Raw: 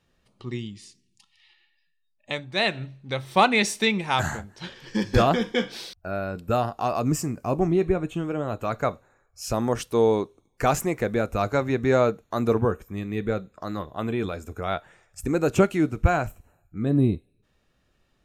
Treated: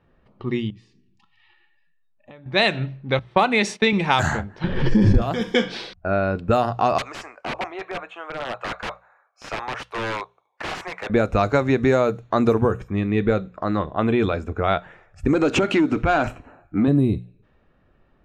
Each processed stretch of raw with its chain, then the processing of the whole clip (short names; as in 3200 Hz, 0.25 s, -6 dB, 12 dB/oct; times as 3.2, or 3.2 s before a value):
0.7–2.46 notch 2100 Hz + compressor 4:1, threshold -52 dBFS
3.19–3.93 HPF 170 Hz + gate -38 dBFS, range -13 dB + high shelf 3900 Hz -8.5 dB
4.64–5.22 tilt -4 dB/oct + backwards sustainer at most 82 dB/s
6.98–11.1 HPF 700 Hz 24 dB/oct + wrapped overs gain 27.5 dB
15.33–16.88 bell 270 Hz +10.5 dB 0.64 oct + compressor 4:1, threshold -24 dBFS + overdrive pedal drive 15 dB, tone 7200 Hz, clips at -15.5 dBFS
whole clip: low-pass opened by the level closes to 1600 Hz, open at -16 dBFS; notches 60/120/180 Hz; compressor, threshold -23 dBFS; gain +9 dB